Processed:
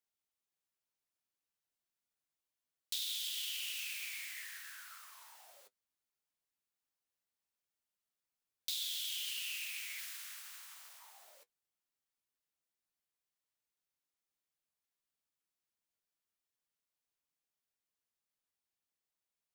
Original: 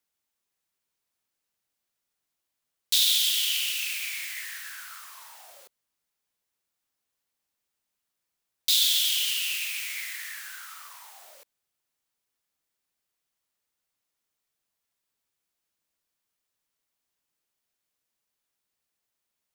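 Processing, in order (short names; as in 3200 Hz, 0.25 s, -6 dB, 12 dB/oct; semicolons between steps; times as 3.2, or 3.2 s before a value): 9.98–10.98 spectral limiter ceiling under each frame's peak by 17 dB; compressor 4:1, threshold -27 dBFS, peak gain reduction 8 dB; flange 1.4 Hz, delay 8.7 ms, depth 5.7 ms, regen -44%; gain -6 dB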